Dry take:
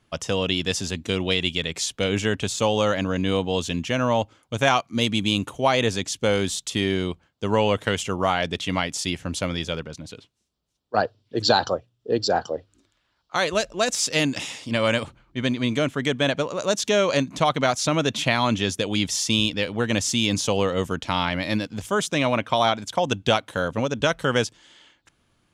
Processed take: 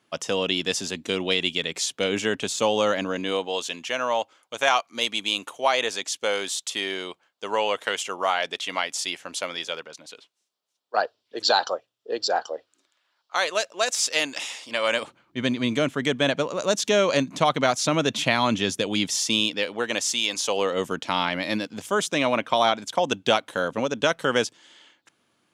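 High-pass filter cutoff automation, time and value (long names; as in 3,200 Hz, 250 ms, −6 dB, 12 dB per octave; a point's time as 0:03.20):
0:02.97 230 Hz
0:03.61 560 Hz
0:14.83 560 Hz
0:15.41 150 Hz
0:18.83 150 Hz
0:20.34 620 Hz
0:20.85 220 Hz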